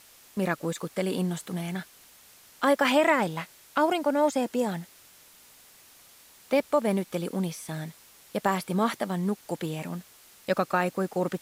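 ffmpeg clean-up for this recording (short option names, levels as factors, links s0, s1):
-af "afwtdn=0.0022"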